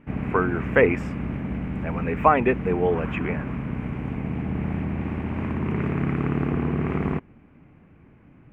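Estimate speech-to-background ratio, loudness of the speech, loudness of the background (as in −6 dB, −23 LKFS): 5.0 dB, −23.5 LKFS, −28.5 LKFS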